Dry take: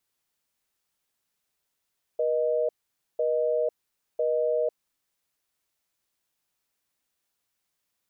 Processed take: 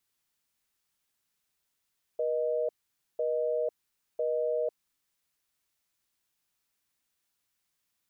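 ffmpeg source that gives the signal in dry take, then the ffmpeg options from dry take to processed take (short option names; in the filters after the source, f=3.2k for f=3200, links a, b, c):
-f lavfi -i "aevalsrc='0.0562*(sin(2*PI*480*t)+sin(2*PI*620*t))*clip(min(mod(t,1),0.5-mod(t,1))/0.005,0,1)':d=3:s=44100"
-af "equalizer=f=570:t=o:w=1.4:g=-4.5"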